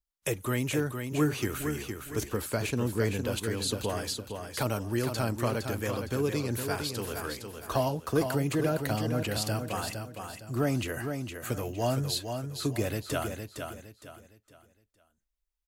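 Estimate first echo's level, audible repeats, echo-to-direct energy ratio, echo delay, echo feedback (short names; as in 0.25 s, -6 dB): -6.5 dB, 3, -6.0 dB, 0.461 s, 33%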